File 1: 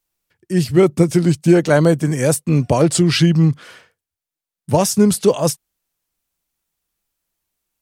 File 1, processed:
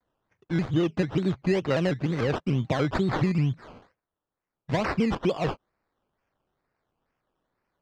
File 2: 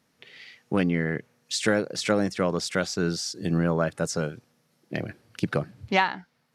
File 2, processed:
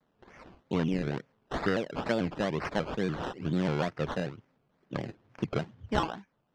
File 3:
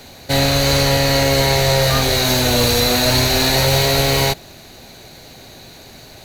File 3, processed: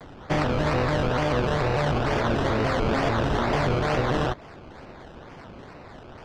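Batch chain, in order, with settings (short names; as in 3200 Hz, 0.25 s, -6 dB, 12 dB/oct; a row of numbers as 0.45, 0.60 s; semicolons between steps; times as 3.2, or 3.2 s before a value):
high shelf 8900 Hz +7 dB; compressor 2.5:1, threshold -18 dBFS; decimation with a swept rate 17×, swing 60% 2.2 Hz; air absorption 170 m; shaped vibrato square 3.4 Hz, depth 160 cents; normalise peaks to -12 dBFS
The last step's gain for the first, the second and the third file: -5.0, -4.0, -3.5 dB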